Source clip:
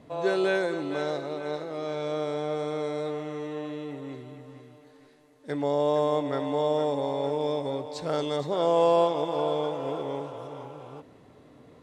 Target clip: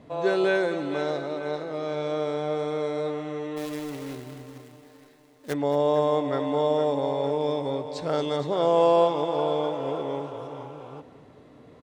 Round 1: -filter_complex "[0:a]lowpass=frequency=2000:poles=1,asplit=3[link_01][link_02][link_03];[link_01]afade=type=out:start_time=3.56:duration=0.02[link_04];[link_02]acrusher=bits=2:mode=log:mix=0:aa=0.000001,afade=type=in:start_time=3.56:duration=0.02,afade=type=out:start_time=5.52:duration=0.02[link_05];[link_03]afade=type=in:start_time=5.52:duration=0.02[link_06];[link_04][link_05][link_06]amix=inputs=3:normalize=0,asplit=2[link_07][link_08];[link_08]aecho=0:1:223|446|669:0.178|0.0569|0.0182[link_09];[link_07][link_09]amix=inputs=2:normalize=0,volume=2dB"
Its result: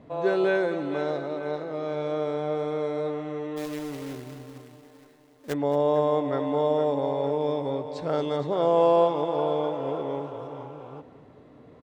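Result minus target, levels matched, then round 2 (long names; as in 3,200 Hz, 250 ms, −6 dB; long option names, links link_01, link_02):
8,000 Hz band −3.5 dB
-filter_complex "[0:a]lowpass=frequency=6300:poles=1,asplit=3[link_01][link_02][link_03];[link_01]afade=type=out:start_time=3.56:duration=0.02[link_04];[link_02]acrusher=bits=2:mode=log:mix=0:aa=0.000001,afade=type=in:start_time=3.56:duration=0.02,afade=type=out:start_time=5.52:duration=0.02[link_05];[link_03]afade=type=in:start_time=5.52:duration=0.02[link_06];[link_04][link_05][link_06]amix=inputs=3:normalize=0,asplit=2[link_07][link_08];[link_08]aecho=0:1:223|446|669:0.178|0.0569|0.0182[link_09];[link_07][link_09]amix=inputs=2:normalize=0,volume=2dB"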